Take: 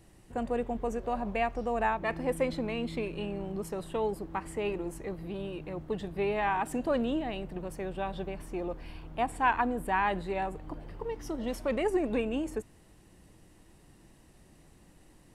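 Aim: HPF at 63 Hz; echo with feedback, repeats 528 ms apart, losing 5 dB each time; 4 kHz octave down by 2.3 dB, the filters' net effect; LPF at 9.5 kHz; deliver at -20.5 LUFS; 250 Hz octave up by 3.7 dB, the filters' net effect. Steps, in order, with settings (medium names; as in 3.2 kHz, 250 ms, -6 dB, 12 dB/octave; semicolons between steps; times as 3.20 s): high-pass 63 Hz; low-pass 9.5 kHz; peaking EQ 250 Hz +4.5 dB; peaking EQ 4 kHz -3.5 dB; feedback delay 528 ms, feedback 56%, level -5 dB; trim +10 dB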